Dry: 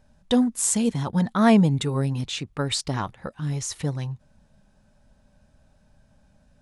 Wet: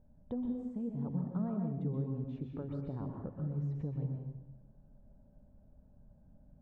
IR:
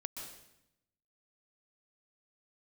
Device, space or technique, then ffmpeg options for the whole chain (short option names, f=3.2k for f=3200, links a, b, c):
television next door: -filter_complex "[0:a]acompressor=threshold=-32dB:ratio=6,lowpass=530[a];[1:a]atrim=start_sample=2205[b];[a][b]afir=irnorm=-1:irlink=0"